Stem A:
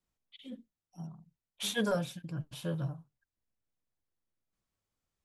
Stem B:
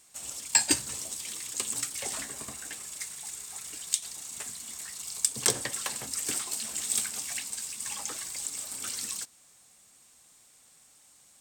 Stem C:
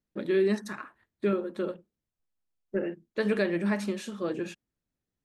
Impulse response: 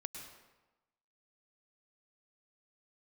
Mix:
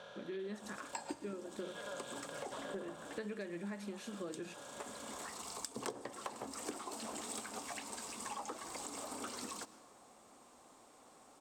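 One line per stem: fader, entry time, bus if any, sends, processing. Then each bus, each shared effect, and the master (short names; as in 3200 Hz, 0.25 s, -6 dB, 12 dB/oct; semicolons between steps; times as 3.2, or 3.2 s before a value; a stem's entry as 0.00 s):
-14.5 dB, 0.00 s, no send, per-bin compression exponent 0.2; LPF 3900 Hz 12 dB/oct; resonant low shelf 430 Hz -12.5 dB, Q 1.5
-3.0 dB, 0.40 s, send -10.5 dB, LPF 3000 Hz 6 dB/oct; band shelf 530 Hz +13 dB 2.8 oct; auto duck -11 dB, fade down 0.95 s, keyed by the third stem
-13.0 dB, 0.00 s, no send, AGC gain up to 9 dB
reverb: on, RT60 1.1 s, pre-delay 96 ms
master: compressor 6:1, threshold -41 dBFS, peak gain reduction 23 dB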